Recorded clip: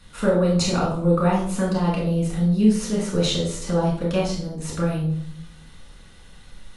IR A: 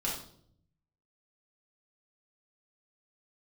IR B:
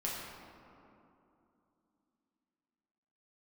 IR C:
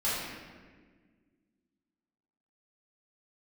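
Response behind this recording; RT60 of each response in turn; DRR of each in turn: A; 0.60, 2.8, 1.6 seconds; −5.0, −6.0, −12.0 decibels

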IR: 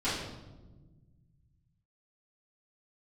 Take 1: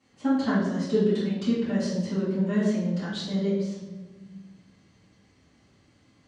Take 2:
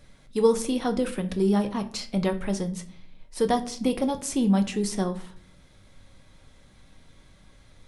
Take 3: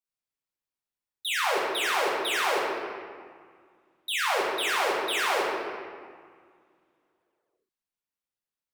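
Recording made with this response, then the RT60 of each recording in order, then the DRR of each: 1; 1.2, 0.55, 1.9 seconds; −14.5, 6.0, −5.5 decibels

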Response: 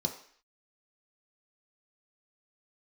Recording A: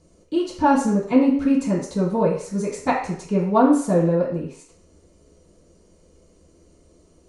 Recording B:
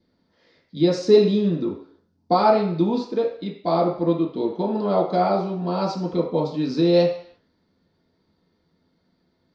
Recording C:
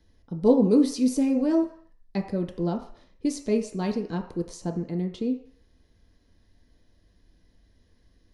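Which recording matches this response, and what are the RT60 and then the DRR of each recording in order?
C; 0.55, 0.55, 0.55 seconds; −10.5, −6.0, 2.0 decibels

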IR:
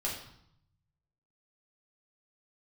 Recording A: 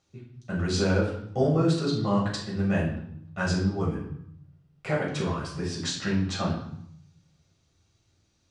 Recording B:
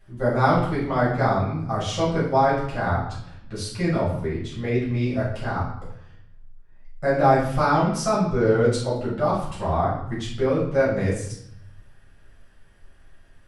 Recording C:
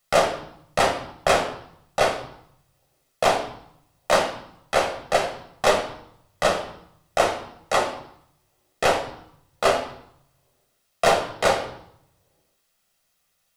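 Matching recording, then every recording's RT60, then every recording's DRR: A; 0.70, 0.70, 0.70 seconds; −4.5, −8.5, 3.5 decibels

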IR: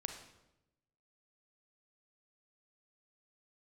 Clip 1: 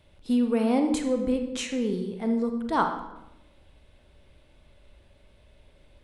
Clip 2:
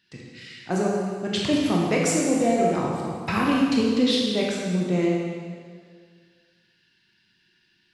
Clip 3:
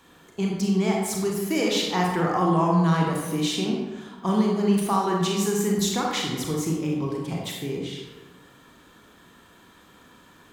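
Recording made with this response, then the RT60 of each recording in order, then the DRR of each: 1; 0.95, 2.0, 1.3 seconds; 5.0, −3.0, −1.5 decibels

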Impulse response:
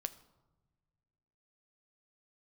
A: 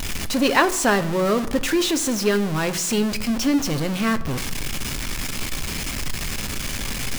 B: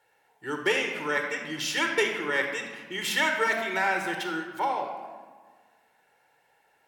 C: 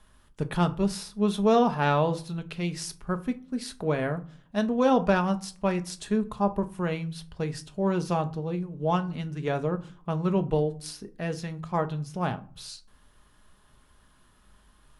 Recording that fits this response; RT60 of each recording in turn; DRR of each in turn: A; non-exponential decay, 1.6 s, 0.45 s; 9.5, 4.0, 7.5 decibels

